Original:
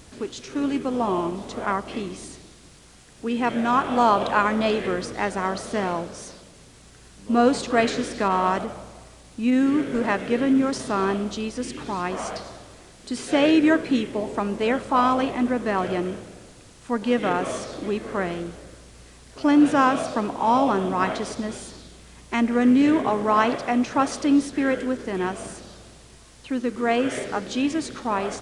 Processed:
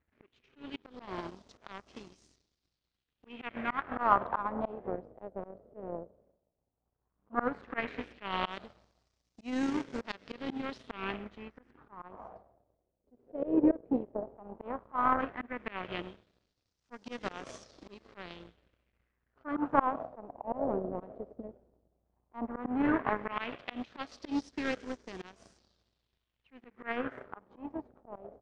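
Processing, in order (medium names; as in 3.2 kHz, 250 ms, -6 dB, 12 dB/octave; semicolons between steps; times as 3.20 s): peaking EQ 71 Hz +8 dB 0.89 oct; power-law waveshaper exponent 2; slow attack 215 ms; LFO low-pass sine 0.13 Hz 530–5900 Hz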